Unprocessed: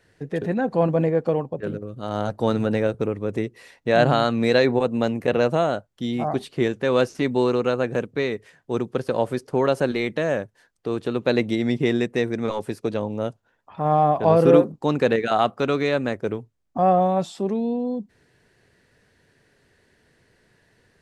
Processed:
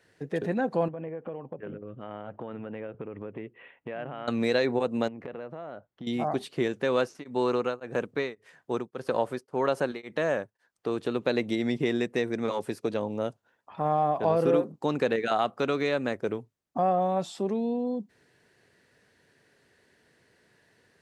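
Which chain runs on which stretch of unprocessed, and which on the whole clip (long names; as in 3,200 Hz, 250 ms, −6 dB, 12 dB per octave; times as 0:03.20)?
0:00.88–0:04.28: Butterworth low-pass 3,200 Hz 72 dB per octave + amplitude tremolo 4.7 Hz, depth 40% + downward compressor, threshold −30 dBFS
0:05.08–0:06.07: low-pass filter 2,200 Hz + downward compressor 20 to 1, threshold −31 dBFS
0:06.97–0:10.90: parametric band 1,100 Hz +4 dB 1.5 octaves + tremolo along a rectified sine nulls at 1.8 Hz
whole clip: high-pass filter 180 Hz 6 dB per octave; downward compressor 2 to 1, threshold −22 dBFS; level −2 dB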